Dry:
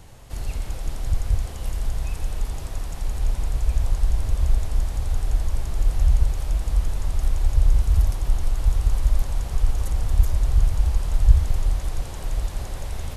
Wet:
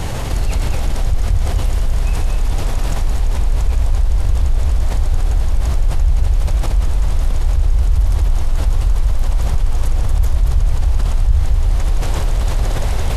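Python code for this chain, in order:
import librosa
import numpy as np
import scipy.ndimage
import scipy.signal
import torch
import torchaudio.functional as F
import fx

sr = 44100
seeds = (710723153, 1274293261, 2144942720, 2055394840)

p1 = fx.high_shelf(x, sr, hz=7800.0, db=-7.0)
p2 = p1 + fx.echo_single(p1, sr, ms=233, db=-5.5, dry=0)
p3 = fx.env_flatten(p2, sr, amount_pct=70)
y = p3 * librosa.db_to_amplitude(-1.5)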